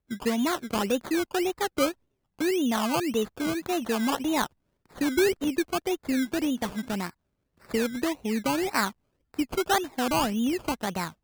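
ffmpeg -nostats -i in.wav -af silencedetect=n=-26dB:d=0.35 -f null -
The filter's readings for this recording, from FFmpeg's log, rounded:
silence_start: 1.89
silence_end: 2.41 | silence_duration: 0.51
silence_start: 4.45
silence_end: 5.01 | silence_duration: 0.56
silence_start: 7.07
silence_end: 7.74 | silence_duration: 0.68
silence_start: 8.88
silence_end: 9.39 | silence_duration: 0.51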